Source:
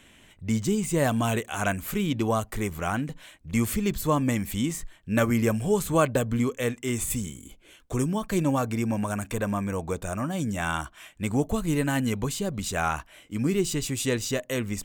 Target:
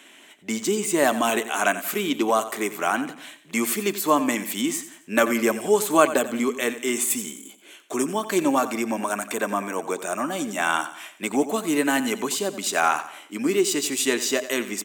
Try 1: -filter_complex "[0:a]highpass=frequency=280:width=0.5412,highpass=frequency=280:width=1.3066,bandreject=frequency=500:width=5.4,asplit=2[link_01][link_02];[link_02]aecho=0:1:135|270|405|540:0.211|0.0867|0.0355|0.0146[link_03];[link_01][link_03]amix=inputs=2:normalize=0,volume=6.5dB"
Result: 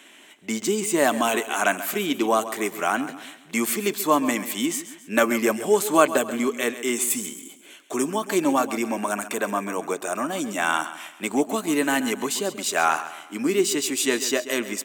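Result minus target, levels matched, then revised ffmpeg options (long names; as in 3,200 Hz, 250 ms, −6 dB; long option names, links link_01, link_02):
echo 46 ms late
-filter_complex "[0:a]highpass=frequency=280:width=0.5412,highpass=frequency=280:width=1.3066,bandreject=frequency=500:width=5.4,asplit=2[link_01][link_02];[link_02]aecho=0:1:89|178|267|356:0.211|0.0867|0.0355|0.0146[link_03];[link_01][link_03]amix=inputs=2:normalize=0,volume=6.5dB"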